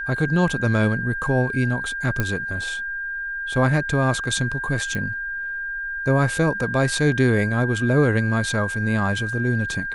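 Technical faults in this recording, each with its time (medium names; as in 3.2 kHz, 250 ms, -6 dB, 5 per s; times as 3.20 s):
whine 1.6 kHz -26 dBFS
2.20 s: pop -9 dBFS
4.95 s: pop -15 dBFS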